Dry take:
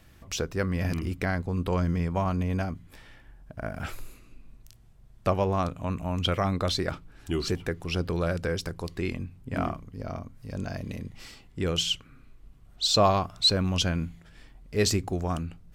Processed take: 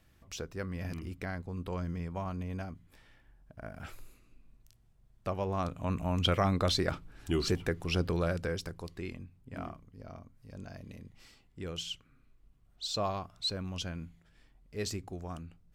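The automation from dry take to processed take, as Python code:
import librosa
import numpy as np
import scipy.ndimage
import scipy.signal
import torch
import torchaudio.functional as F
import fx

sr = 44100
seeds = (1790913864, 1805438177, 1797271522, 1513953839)

y = fx.gain(x, sr, db=fx.line((5.29, -10.0), (5.96, -1.5), (8.02, -1.5), (9.33, -12.0)))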